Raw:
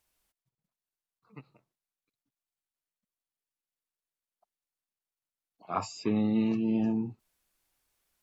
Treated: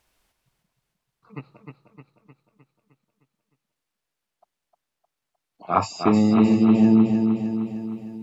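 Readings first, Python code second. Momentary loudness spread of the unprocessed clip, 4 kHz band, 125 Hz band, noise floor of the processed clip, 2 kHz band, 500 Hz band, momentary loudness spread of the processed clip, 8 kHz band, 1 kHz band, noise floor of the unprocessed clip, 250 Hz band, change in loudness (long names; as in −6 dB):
8 LU, +8.5 dB, +12.0 dB, −83 dBFS, +10.5 dB, +11.5 dB, 13 LU, can't be measured, +12.5 dB, below −85 dBFS, +12.0 dB, +10.5 dB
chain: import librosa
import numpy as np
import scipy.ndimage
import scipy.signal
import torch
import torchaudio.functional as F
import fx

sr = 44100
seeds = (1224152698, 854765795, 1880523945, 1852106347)

p1 = fx.lowpass(x, sr, hz=4000.0, slope=6)
p2 = fx.rider(p1, sr, range_db=10, speed_s=0.5)
p3 = p1 + (p2 * librosa.db_to_amplitude(-2.0))
p4 = fx.echo_feedback(p3, sr, ms=307, feedback_pct=56, wet_db=-5.5)
y = p4 * librosa.db_to_amplitude(5.0)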